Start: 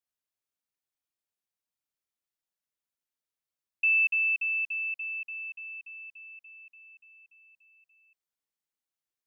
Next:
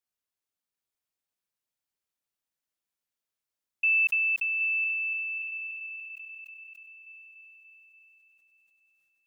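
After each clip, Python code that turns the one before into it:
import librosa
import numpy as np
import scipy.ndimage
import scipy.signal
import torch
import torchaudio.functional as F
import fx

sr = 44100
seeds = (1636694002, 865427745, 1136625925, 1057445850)

y = fx.echo_feedback(x, sr, ms=773, feedback_pct=33, wet_db=-4.5)
y = fx.sustainer(y, sr, db_per_s=22.0)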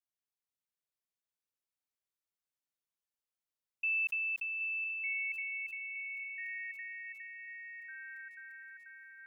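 y = fx.echo_pitch(x, sr, ms=479, semitones=-3, count=3, db_per_echo=-6.0)
y = y * 10.0 ** (-9.0 / 20.0)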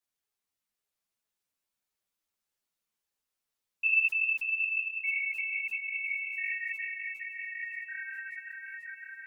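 y = fx.echo_feedback(x, sr, ms=985, feedback_pct=31, wet_db=-9.0)
y = fx.ensemble(y, sr)
y = y * 10.0 ** (9.0 / 20.0)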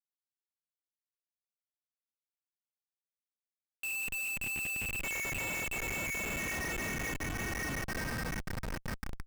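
y = fx.schmitt(x, sr, flips_db=-37.0)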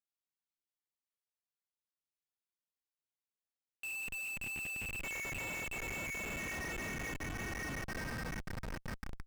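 y = fx.high_shelf(x, sr, hz=8200.0, db=-6.0)
y = y * 10.0 ** (-4.0 / 20.0)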